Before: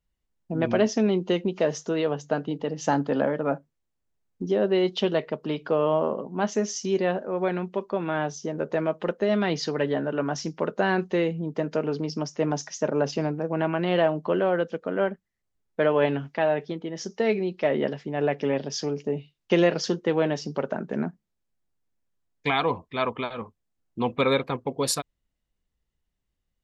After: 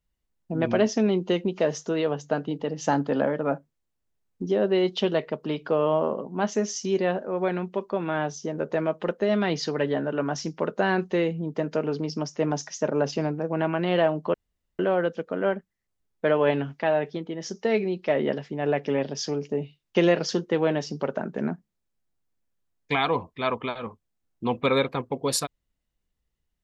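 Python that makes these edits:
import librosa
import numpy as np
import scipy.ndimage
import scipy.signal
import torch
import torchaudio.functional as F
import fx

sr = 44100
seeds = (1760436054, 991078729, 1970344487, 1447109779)

y = fx.edit(x, sr, fx.insert_room_tone(at_s=14.34, length_s=0.45), tone=tone)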